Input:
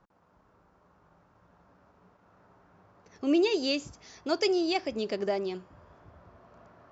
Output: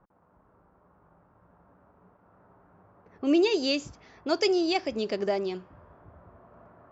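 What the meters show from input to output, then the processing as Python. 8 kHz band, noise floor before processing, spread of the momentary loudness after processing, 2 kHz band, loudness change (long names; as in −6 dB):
can't be measured, −65 dBFS, 11 LU, +2.0 dB, +2.0 dB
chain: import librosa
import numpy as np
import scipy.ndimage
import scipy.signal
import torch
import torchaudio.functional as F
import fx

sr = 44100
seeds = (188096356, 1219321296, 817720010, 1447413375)

y = fx.env_lowpass(x, sr, base_hz=1400.0, full_db=-26.0)
y = F.gain(torch.from_numpy(y), 2.0).numpy()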